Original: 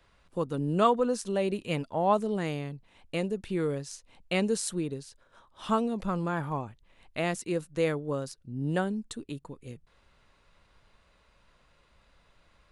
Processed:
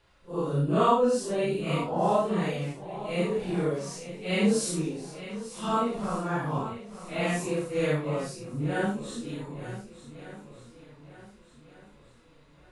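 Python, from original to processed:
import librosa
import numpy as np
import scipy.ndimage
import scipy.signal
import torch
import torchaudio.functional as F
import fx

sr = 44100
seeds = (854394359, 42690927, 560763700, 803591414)

y = fx.phase_scramble(x, sr, seeds[0], window_ms=200)
y = fx.doubler(y, sr, ms=34.0, db=-2.5)
y = fx.echo_swing(y, sr, ms=1495, ratio=1.5, feedback_pct=34, wet_db=-13.5)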